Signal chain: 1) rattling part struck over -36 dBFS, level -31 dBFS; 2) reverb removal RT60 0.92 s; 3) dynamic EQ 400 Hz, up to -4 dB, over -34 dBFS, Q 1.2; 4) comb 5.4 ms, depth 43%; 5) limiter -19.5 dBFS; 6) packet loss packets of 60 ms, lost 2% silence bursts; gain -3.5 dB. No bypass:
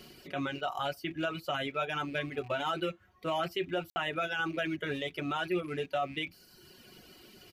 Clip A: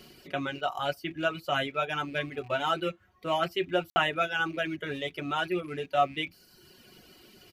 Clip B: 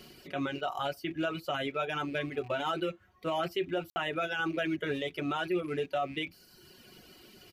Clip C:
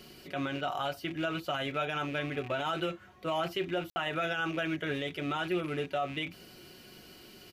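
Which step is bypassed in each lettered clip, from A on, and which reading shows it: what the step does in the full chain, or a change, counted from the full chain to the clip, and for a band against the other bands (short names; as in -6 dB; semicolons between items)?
5, crest factor change +6.5 dB; 3, 250 Hz band +2.0 dB; 2, 125 Hz band +2.0 dB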